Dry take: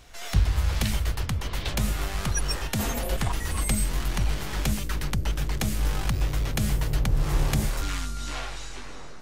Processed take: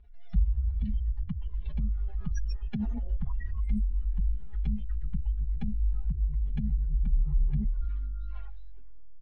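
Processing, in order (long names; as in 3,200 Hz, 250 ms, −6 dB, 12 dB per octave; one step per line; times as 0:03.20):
expanding power law on the bin magnitudes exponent 2.4
low-pass filter 4,000 Hz 24 dB per octave
notch filter 650 Hz, Q 13
comb filter 4.8 ms, depth 88%
level −5 dB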